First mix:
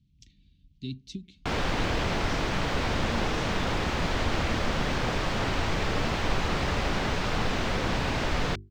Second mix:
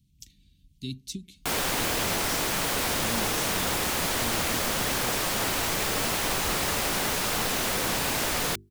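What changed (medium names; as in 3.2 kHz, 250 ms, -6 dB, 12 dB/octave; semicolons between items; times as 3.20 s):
background: add bass shelf 140 Hz -11 dB; master: remove distance through air 170 m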